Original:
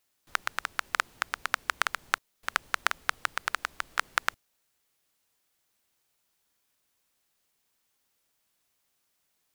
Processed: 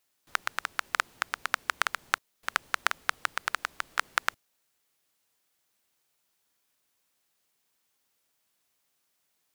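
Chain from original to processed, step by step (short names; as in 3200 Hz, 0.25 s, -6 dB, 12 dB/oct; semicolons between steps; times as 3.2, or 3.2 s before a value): low shelf 72 Hz -9 dB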